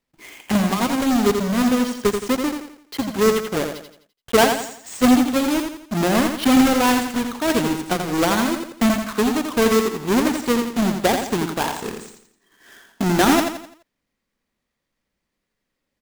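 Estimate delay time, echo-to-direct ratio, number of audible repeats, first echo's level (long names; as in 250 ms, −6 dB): 85 ms, −5.0 dB, 4, −6.0 dB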